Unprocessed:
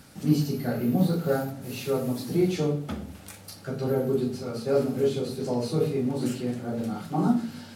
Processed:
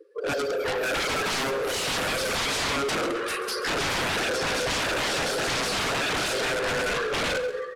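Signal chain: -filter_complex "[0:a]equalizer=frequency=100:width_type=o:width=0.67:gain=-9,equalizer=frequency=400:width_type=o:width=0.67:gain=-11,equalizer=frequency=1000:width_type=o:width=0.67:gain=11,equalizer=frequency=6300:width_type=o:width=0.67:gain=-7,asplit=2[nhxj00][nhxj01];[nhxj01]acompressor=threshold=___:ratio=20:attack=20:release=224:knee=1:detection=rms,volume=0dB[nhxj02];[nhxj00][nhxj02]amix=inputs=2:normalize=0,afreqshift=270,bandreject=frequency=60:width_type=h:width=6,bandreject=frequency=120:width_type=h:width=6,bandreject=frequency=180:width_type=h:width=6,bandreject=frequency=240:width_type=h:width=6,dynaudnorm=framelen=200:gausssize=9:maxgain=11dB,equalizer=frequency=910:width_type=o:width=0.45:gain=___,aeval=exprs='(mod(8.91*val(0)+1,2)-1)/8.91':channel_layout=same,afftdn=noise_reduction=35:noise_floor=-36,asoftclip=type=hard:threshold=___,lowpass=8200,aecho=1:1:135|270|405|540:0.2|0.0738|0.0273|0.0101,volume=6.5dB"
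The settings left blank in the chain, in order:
-34dB, -11.5, -32dB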